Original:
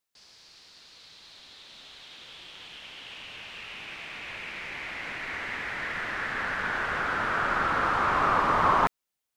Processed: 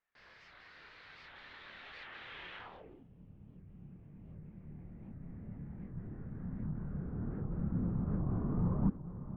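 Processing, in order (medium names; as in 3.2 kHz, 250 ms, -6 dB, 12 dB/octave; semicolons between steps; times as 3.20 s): chorus voices 4, 0.43 Hz, delay 28 ms, depth 1.4 ms; on a send: echo that smears into a reverb 518 ms, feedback 61%, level -13.5 dB; on the sum: low-pass sweep 1.8 kHz -> 180 Hz, 2.56–3.08 s; warped record 78 rpm, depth 250 cents; trim +2.5 dB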